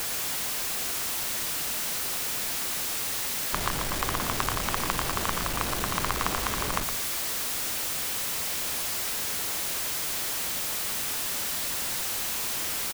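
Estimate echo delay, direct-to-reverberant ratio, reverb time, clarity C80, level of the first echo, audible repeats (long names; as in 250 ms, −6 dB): 115 ms, no reverb audible, no reverb audible, no reverb audible, −9.0 dB, 1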